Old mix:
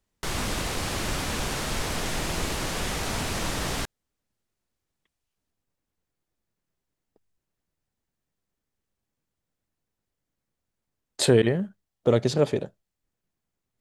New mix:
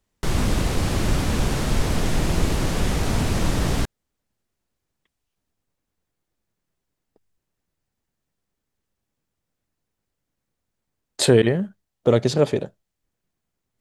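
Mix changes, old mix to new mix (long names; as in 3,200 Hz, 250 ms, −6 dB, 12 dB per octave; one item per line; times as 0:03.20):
speech +3.5 dB
background: add low-shelf EQ 450 Hz +11.5 dB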